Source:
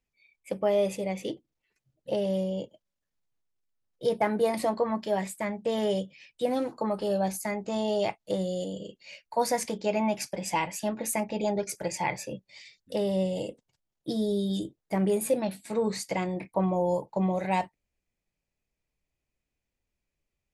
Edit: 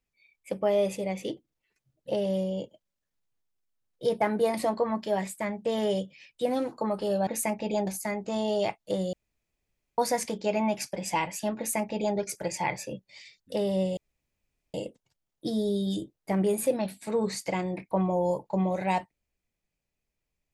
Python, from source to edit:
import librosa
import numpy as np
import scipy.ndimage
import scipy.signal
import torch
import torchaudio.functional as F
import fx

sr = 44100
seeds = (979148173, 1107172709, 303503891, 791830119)

y = fx.edit(x, sr, fx.room_tone_fill(start_s=8.53, length_s=0.85),
    fx.duplicate(start_s=10.97, length_s=0.6, to_s=7.27),
    fx.insert_room_tone(at_s=13.37, length_s=0.77), tone=tone)